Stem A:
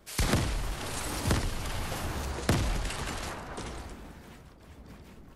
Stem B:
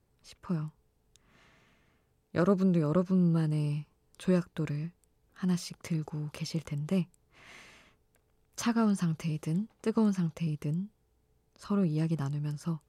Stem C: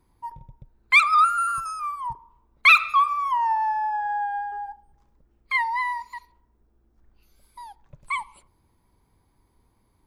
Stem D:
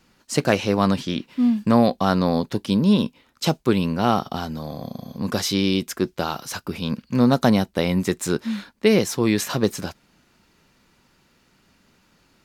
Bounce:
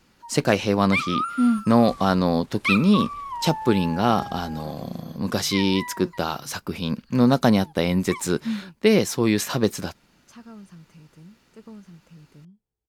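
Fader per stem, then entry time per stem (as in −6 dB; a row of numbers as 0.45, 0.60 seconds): −18.0, −16.0, −9.0, −0.5 decibels; 1.70, 1.70, 0.00, 0.00 seconds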